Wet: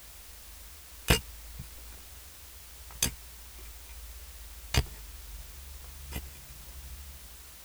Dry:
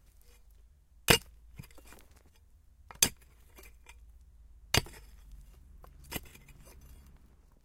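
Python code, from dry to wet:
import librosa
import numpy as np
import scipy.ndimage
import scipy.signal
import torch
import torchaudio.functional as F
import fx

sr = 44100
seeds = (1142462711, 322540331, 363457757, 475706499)

p1 = fx.peak_eq(x, sr, hz=67.0, db=11.0, octaves=2.1)
p2 = fx.doubler(p1, sr, ms=16.0, db=-4)
p3 = fx.quant_dither(p2, sr, seeds[0], bits=6, dither='triangular')
p4 = p2 + (p3 * librosa.db_to_amplitude(-6.0))
y = p4 * librosa.db_to_amplitude(-8.0)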